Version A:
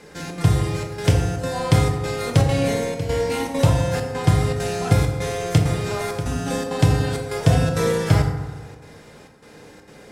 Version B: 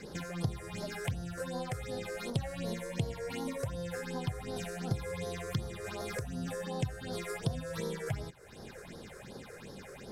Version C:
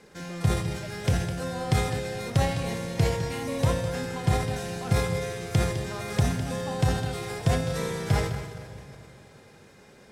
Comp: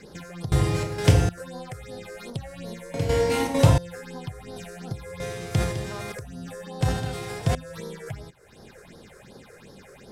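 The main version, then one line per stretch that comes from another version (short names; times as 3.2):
B
0.52–1.29 from A
2.94–3.78 from A
5.2–6.12 from C
6.81–7.55 from C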